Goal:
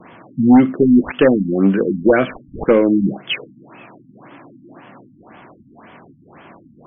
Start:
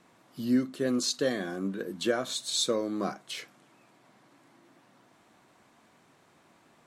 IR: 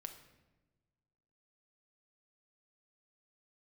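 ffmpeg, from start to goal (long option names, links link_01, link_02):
-filter_complex "[0:a]acrossover=split=660|1300[link_01][link_02][link_03];[link_02]acompressor=threshold=-58dB:ratio=6[link_04];[link_01][link_04][link_03]amix=inputs=3:normalize=0,highshelf=frequency=6300:gain=12,aeval=exprs='0.299*sin(PI/2*3.16*val(0)/0.299)':channel_layout=same,adynamicequalizer=threshold=0.0141:dfrequency=2500:dqfactor=2.6:tfrequency=2500:tqfactor=2.6:attack=5:release=100:ratio=0.375:range=2.5:mode=boostabove:tftype=bell,afftfilt=real='re*lt(b*sr/1024,290*pow(3500/290,0.5+0.5*sin(2*PI*1.9*pts/sr)))':imag='im*lt(b*sr/1024,290*pow(3500/290,0.5+0.5*sin(2*PI*1.9*pts/sr)))':win_size=1024:overlap=0.75,volume=6dB"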